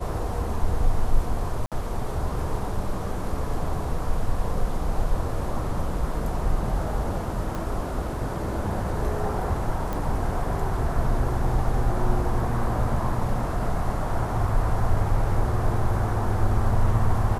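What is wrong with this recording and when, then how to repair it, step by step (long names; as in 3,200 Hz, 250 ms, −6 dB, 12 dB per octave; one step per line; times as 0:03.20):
0:01.66–0:01.72: drop-out 57 ms
0:07.55: click
0:09.93: click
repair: click removal
repair the gap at 0:01.66, 57 ms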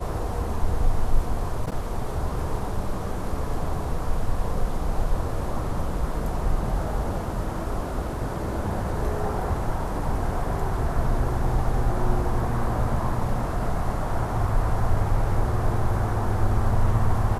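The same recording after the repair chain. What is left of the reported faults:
none of them is left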